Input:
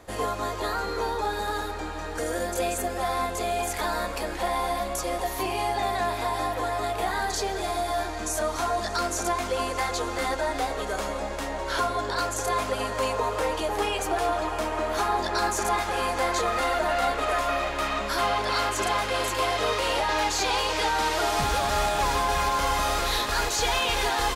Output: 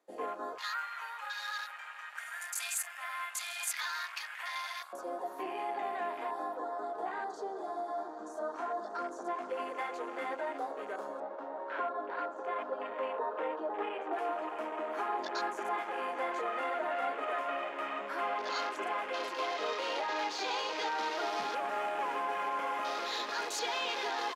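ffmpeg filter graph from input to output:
-filter_complex "[0:a]asettb=1/sr,asplit=3[s0][s1][s2];[s0]atrim=end=0.584[s3];[s1]atrim=start=0.58:end=4.93,asetpts=PTS-STARTPTS,afade=t=in:d=0.004:c=qsin,afade=t=out:st=4.346:d=0.004:c=qsin,highpass=f=1300:w=0.5412,highpass=f=1300:w=1.3066,highshelf=f=12000:g=11,acontrast=59[s4];[s2]atrim=start=4.926[s5];[s3][s4]acrossfade=d=0.004:c1=hsin:c2=qsin[s6];[s6][s5]acrossfade=d=0.004:c1=qsin:c2=hsin,asettb=1/sr,asplit=3[s7][s8][s9];[s7]atrim=end=6.574[s10];[s8]atrim=start=6.57:end=9.49,asetpts=PTS-STARTPTS,afade=t=in:d=0.004:c=qsin,afade=t=out:st=2.916:d=0.004:c=qsin,lowpass=7800,equalizer=f=2500:t=o:w=0.51:g=-10.5[s11];[s9]atrim=start=9.486[s12];[s10][s11]acrossfade=d=0.004:c1=hsin:c2=qsin[s13];[s13][s12]acrossfade=d=0.004:c1=qsin:c2=hsin,asettb=1/sr,asplit=3[s14][s15][s16];[s14]atrim=end=11.204[s17];[s15]atrim=start=11.2:end=14.13,asetpts=PTS-STARTPTS,afade=t=in:d=0.004:c=qsin,afade=t=out:st=2.926:d=0.004:c=qsin,highpass=170,lowpass=2800,asplit=2[s18][s19];[s19]adelay=13,volume=0.282[s20];[s18][s20]amix=inputs=2:normalize=0,atrim=end_sample=129213[s21];[s16]atrim=start=14.126[s22];[s17][s21]acrossfade=d=0.004:c1=hsin:c2=qsin[s23];[s23][s22]acrossfade=d=0.004:c1=qsin:c2=hsin,afwtdn=0.0224,highpass=f=260:w=0.5412,highpass=f=260:w=1.3066,volume=0.355"

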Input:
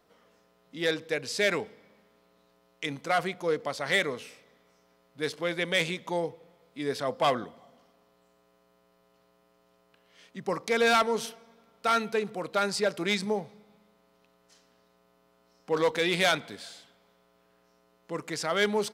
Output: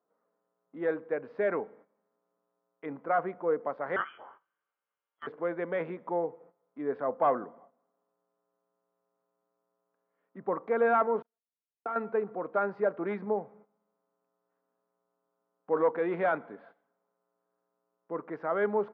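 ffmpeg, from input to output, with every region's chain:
-filter_complex "[0:a]asettb=1/sr,asplit=3[s0][s1][s2];[s0]atrim=end=3.964[s3];[s1]atrim=start=3.96:end=5.27,asetpts=PTS-STARTPTS,afade=t=in:d=0.004:c=qsin,afade=t=out:st=1.306:d=0.004:c=qsin,asplit=2[s4][s5];[s5]adelay=21,volume=0.631[s6];[s4][s6]amix=inputs=2:normalize=0,atrim=end_sample=57771,lowpass=f=3000:t=q:w=0.5098,lowpass=f=3000:t=q:w=0.6013,lowpass=f=3000:t=q:w=0.9,lowpass=f=3000:t=q:w=2.563,afreqshift=-3500[s7];[s2]atrim=start=5.266[s8];[s3][s7]acrossfade=d=0.004:c1=hsin:c2=qsin[s9];[s9][s8]acrossfade=d=0.004:c1=qsin:c2=hsin,asettb=1/sr,asplit=3[s10][s11][s12];[s10]atrim=end=11.224[s13];[s11]atrim=start=11.22:end=11.96,asetpts=PTS-STARTPTS,afade=t=in:d=0.004:c=qsin,afade=t=out:st=0.736:d=0.004:c=qsin,aeval=exprs='val(0)+0.5*0.0106*sgn(val(0))':c=same,agate=range=0.00282:threshold=0.0316:ratio=16:release=100:detection=peak,acompressor=threshold=0.0355:ratio=6:attack=3.2:release=140:knee=1:detection=peak[s14];[s12]atrim=start=11.956[s15];[s13][s14]acrossfade=d=0.004:c1=hsin:c2=qsin[s16];[s16][s15]acrossfade=d=0.004:c1=qsin:c2=hsin,lowpass=f=1400:w=0.5412,lowpass=f=1400:w=1.3066,agate=range=0.2:threshold=0.002:ratio=16:detection=peak,highpass=250"

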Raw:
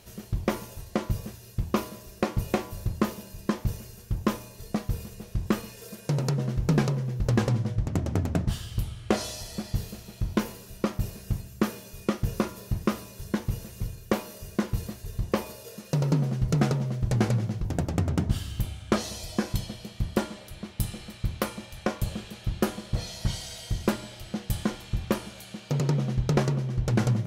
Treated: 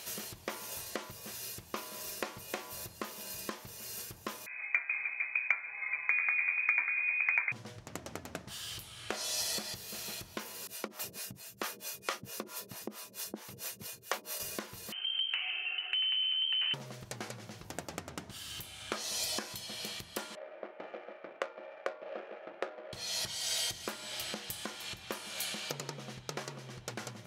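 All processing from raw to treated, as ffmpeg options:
-filter_complex "[0:a]asettb=1/sr,asplit=3[s0][s1][s2];[s0]atrim=end=4.464[s3];[s1]atrim=start=4.46:end=7.52,asetpts=PTS-STARTPTS,afade=t=in:d=0.004:c=qsin,afade=t=out:st=3.056:d=0.004:c=qsin,highpass=210,aeval=exprs='val(0)+0.002*(sin(2*PI*60*n/s)+sin(2*PI*2*60*n/s)/2+sin(2*PI*3*60*n/s)/3+sin(2*PI*4*60*n/s)/4+sin(2*PI*5*60*n/s)/5)':c=same,lowpass=f=2200:t=q:w=0.5098,lowpass=f=2200:t=q:w=0.6013,lowpass=f=2200:t=q:w=0.9,lowpass=f=2200:t=q:w=2.563,afreqshift=-2600[s4];[s2]atrim=start=7.516[s5];[s3][s4]acrossfade=d=0.004:c1=hsin:c2=qsin[s6];[s6][s5]acrossfade=d=0.004:c1=qsin:c2=hsin,asettb=1/sr,asplit=3[s7][s8][s9];[s7]atrim=end=10.674[s10];[s8]atrim=start=10.67:end=14.4,asetpts=PTS-STARTPTS,afade=t=in:d=0.004:c=qsin,afade=t=out:st=3.726:d=0.004:c=qsin,highpass=120,acrossover=split=440[s11][s12];[s11]aeval=exprs='val(0)*(1-1/2+1/2*cos(2*PI*4.5*n/s))':c=same[s13];[s12]aeval=exprs='val(0)*(1-1/2-1/2*cos(2*PI*4.5*n/s))':c=same[s14];[s13][s14]amix=inputs=2:normalize=0[s15];[s9]atrim=start=14.396[s16];[s10][s15]acrossfade=d=0.004:c1=hsin:c2=qsin[s17];[s17][s16]acrossfade=d=0.004:c1=qsin:c2=hsin,asettb=1/sr,asplit=3[s18][s19][s20];[s18]atrim=end=14.924[s21];[s19]atrim=start=14.92:end=16.74,asetpts=PTS-STARTPTS,afade=t=in:d=0.004:c=qsin,afade=t=out:st=1.816:d=0.004:c=qsin,volume=11.9,asoftclip=hard,volume=0.0841,lowpass=f=2700:t=q:w=0.5098,lowpass=f=2700:t=q:w=0.6013,lowpass=f=2700:t=q:w=0.9,lowpass=f=2700:t=q:w=2.563,afreqshift=-3200,acompressor=threshold=0.00891:ratio=5:attack=3.2:release=140:knee=1:detection=peak[s22];[s20]atrim=start=16.736[s23];[s21][s22]acrossfade=d=0.004:c1=hsin:c2=qsin[s24];[s24][s23]acrossfade=d=0.004:c1=qsin:c2=hsin,asettb=1/sr,asplit=3[s25][s26][s27];[s25]atrim=end=20.354[s28];[s26]atrim=start=20.35:end=22.93,asetpts=PTS-STARTPTS,afade=t=in:d=0.004:c=qsin,afade=t=out:st=2.576:d=0.004:c=qsin,highpass=f=330:w=0.5412,highpass=f=330:w=1.3066,equalizer=f=580:t=q:w=4:g=9,equalizer=f=1000:t=q:w=4:g=-7,equalizer=f=1700:t=q:w=4:g=-3,lowpass=f=2200:w=0.5412,lowpass=f=2200:w=1.3066,adynamicsmooth=sensitivity=6:basefreq=1100[s29];[s27]atrim=start=22.926[s30];[s28][s29]acrossfade=d=0.004:c1=hsin:c2=qsin[s31];[s31][s30]acrossfade=d=0.004:c1=qsin:c2=hsin,acompressor=threshold=0.0158:ratio=12,highpass=f=1400:p=1,volume=3.35"

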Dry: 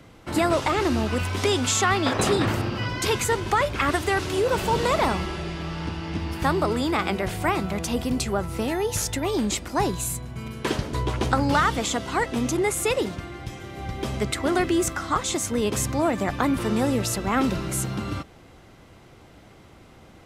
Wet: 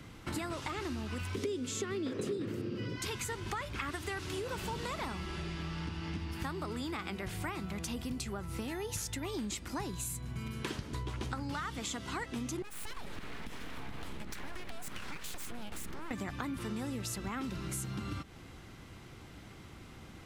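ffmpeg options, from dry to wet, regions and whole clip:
-filter_complex "[0:a]asettb=1/sr,asplit=3[s0][s1][s2];[s0]atrim=end=1.354[s3];[s1]atrim=start=1.35:end=2.96,asetpts=PTS-STARTPTS,afade=t=in:d=0.004:c=qsin,afade=t=out:st=1.606:d=0.004:c=qsin,highpass=150,lowshelf=f=610:t=q:w=3:g=9[s4];[s2]atrim=start=2.956[s5];[s3][s4]acrossfade=d=0.004:c1=hsin:c2=qsin[s6];[s6][s5]acrossfade=d=0.004:c1=qsin:c2=hsin,asettb=1/sr,asplit=3[s7][s8][s9];[s7]atrim=end=12.624[s10];[s8]atrim=start=12.62:end=16.11,asetpts=PTS-STARTPTS,afade=t=in:d=0.004:c=qsin,afade=t=out:st=3.486:d=0.004:c=qsin,equalizer=f=5800:t=o:w=0.82:g=-8,acompressor=threshold=0.0251:ratio=6:attack=3.2:release=140:knee=1:detection=peak,aeval=exprs='abs(val(0))':c=same[s11];[s9]atrim=start=16.106[s12];[s10][s11]acrossfade=d=0.004:c1=hsin:c2=qsin[s13];[s13][s12]acrossfade=d=0.004:c1=qsin:c2=hsin,equalizer=f=600:w=1.2:g=-8,acompressor=threshold=0.0158:ratio=6"

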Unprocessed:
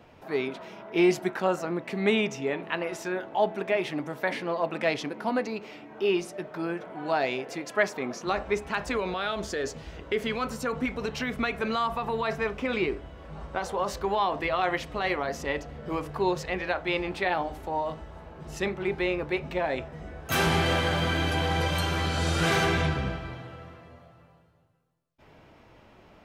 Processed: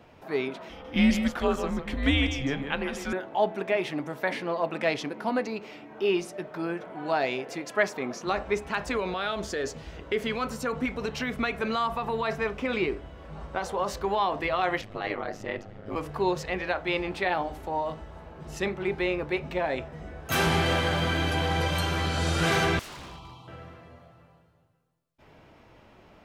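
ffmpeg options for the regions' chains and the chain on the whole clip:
-filter_complex "[0:a]asettb=1/sr,asplit=3[s0][s1][s2];[s0]atrim=end=0.694[s3];[s1]atrim=start=0.69:end=3.13,asetpts=PTS-STARTPTS,afade=t=in:d=0.004:c=qsin,afade=t=out:st=2.436:d=0.004:c=qsin,aecho=1:1:153:0.376,atrim=end_sample=107604,afreqshift=-140,equalizer=f=3200:t=o:w=0.21:g=10[s4];[s2]atrim=start=3.126[s5];[s3][s4]acrossfade=d=0.004:c1=hsin:c2=qsin[s6];[s6][s5]acrossfade=d=0.004:c1=qsin:c2=hsin,asettb=1/sr,asplit=3[s7][s8][s9];[s7]atrim=end=14.814[s10];[s8]atrim=start=14.81:end=15.96,asetpts=PTS-STARTPTS,afade=t=in:d=0.004:c=qsin,afade=t=out:st=1.146:d=0.004:c=qsin,highshelf=f=5200:g=-10,bandreject=f=990:w=11,aeval=exprs='val(0)*sin(2*PI*51*n/s)':c=same[s11];[s9]atrim=start=15.956[s12];[s10][s11]acrossfade=d=0.004:c1=hsin:c2=qsin[s13];[s13][s12]acrossfade=d=0.004:c1=qsin:c2=hsin,asettb=1/sr,asplit=3[s14][s15][s16];[s14]atrim=end=22.794[s17];[s15]atrim=start=22.79:end=23.48,asetpts=PTS-STARTPTS,afade=t=in:d=0.004:c=qsin,afade=t=out:st=0.686:d=0.004:c=qsin,asuperstop=centerf=1700:order=4:qfactor=0.85,lowshelf=f=780:t=q:w=3:g=-8.5,aeval=exprs='0.0133*(abs(mod(val(0)/0.0133+3,4)-2)-1)':c=same[s18];[s16]atrim=start=23.476[s19];[s17][s18]acrossfade=d=0.004:c1=hsin:c2=qsin[s20];[s20][s19]acrossfade=d=0.004:c1=qsin:c2=hsin"

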